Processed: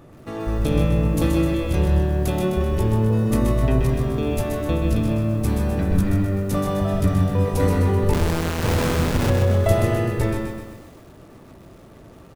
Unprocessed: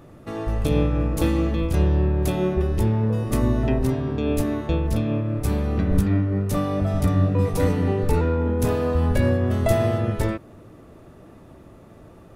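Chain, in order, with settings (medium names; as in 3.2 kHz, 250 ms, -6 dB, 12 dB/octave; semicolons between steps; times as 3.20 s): 8.13–9.30 s: Schmitt trigger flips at -21.5 dBFS; echo from a far wall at 26 m, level -7 dB; bit-crushed delay 128 ms, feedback 55%, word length 8-bit, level -5.5 dB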